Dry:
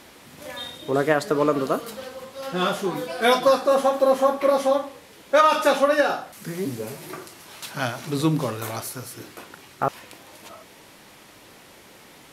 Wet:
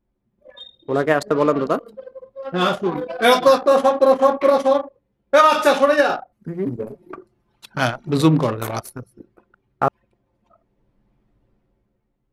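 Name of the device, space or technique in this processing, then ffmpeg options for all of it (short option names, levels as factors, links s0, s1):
voice memo with heavy noise removal: -af "anlmdn=63.1,dynaudnorm=f=160:g=11:m=3.76,volume=0.891"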